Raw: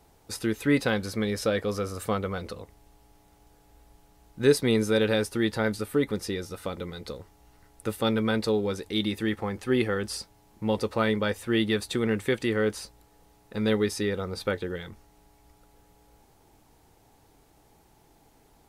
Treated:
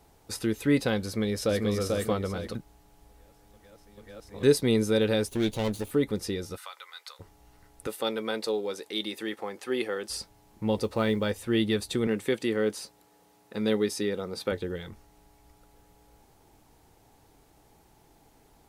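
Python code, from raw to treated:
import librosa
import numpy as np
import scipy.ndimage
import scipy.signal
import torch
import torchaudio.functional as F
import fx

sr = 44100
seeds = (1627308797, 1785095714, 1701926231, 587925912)

y = fx.echo_throw(x, sr, start_s=1.05, length_s=0.63, ms=440, feedback_pct=35, wet_db=-2.5)
y = fx.lower_of_two(y, sr, delay_ms=0.3, at=(5.28, 5.91))
y = fx.highpass(y, sr, hz=970.0, slope=24, at=(6.56, 7.19), fade=0.02)
y = fx.highpass(y, sr, hz=400.0, slope=12, at=(7.87, 10.1))
y = fx.quant_companded(y, sr, bits=8, at=(10.76, 11.32))
y = fx.highpass(y, sr, hz=170.0, slope=12, at=(12.07, 14.52))
y = fx.edit(y, sr, fx.reverse_span(start_s=2.55, length_s=1.88), tone=tone)
y = fx.dynamic_eq(y, sr, hz=1500.0, q=0.82, threshold_db=-42.0, ratio=4.0, max_db=-5)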